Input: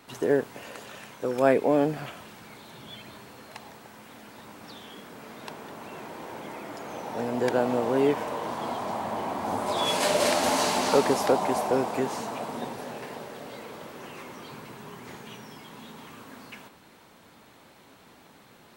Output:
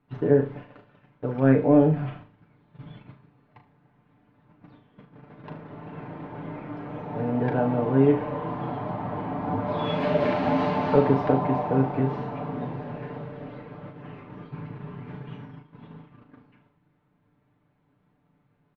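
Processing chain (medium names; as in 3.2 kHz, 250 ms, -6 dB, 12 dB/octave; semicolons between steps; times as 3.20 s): tone controls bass +13 dB, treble -12 dB; gate -38 dBFS, range -17 dB; distance through air 310 m; comb 6.8 ms; flutter echo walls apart 6.4 m, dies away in 0.29 s; trim -2.5 dB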